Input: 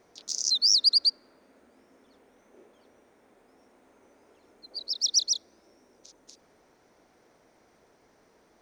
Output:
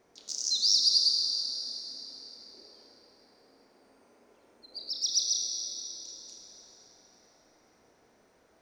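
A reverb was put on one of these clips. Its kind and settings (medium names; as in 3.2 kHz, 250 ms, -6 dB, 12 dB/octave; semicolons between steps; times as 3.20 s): Schroeder reverb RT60 3.3 s, combs from 26 ms, DRR 0.5 dB; trim -4.5 dB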